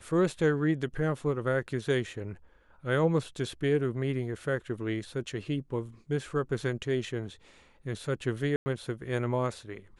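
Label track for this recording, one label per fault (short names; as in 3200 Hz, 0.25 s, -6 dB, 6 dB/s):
8.560000	8.660000	gap 0.1 s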